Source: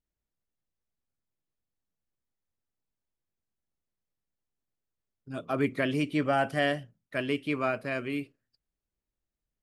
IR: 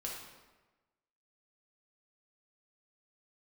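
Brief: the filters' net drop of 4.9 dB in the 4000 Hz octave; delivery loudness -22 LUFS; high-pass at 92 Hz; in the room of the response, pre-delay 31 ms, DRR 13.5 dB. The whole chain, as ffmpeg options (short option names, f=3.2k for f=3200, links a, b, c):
-filter_complex "[0:a]highpass=92,equalizer=f=4k:t=o:g=-8,asplit=2[a][b];[1:a]atrim=start_sample=2205,adelay=31[c];[b][c]afir=irnorm=-1:irlink=0,volume=-13.5dB[d];[a][d]amix=inputs=2:normalize=0,volume=8.5dB"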